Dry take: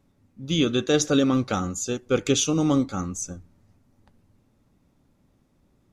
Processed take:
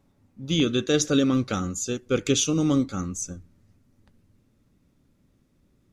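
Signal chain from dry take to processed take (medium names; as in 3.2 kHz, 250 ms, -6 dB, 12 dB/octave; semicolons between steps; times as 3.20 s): peaking EQ 820 Hz +2 dB 0.9 oct, from 0.60 s -7.5 dB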